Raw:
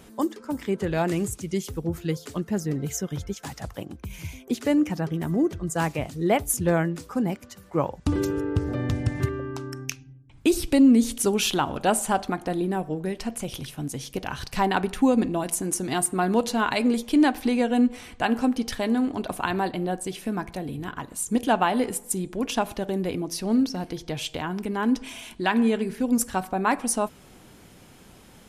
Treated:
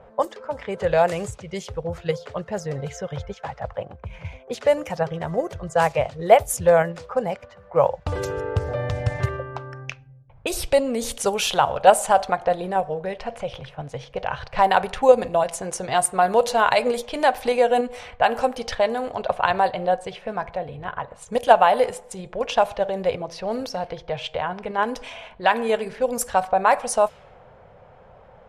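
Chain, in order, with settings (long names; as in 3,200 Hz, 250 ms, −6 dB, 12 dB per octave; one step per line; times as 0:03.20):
low-pass that shuts in the quiet parts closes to 1,200 Hz, open at −19 dBFS
drawn EQ curve 130 Hz 0 dB, 310 Hz −16 dB, 520 Hz +11 dB, 1,200 Hz +4 dB, 6,000 Hz +1 dB
in parallel at 0 dB: output level in coarse steps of 11 dB
on the sum: level −3 dB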